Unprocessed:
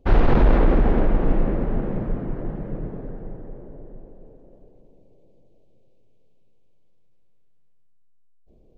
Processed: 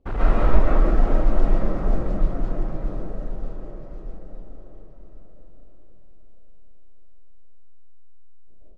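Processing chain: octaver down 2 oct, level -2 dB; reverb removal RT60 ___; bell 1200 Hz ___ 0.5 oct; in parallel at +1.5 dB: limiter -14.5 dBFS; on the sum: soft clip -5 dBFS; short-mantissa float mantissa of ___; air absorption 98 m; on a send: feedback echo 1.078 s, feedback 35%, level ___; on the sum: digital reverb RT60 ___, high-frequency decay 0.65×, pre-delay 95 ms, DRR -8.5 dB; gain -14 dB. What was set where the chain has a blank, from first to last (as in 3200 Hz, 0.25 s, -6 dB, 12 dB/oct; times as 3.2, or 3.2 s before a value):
0.76 s, +6 dB, 4-bit, -14 dB, 0.46 s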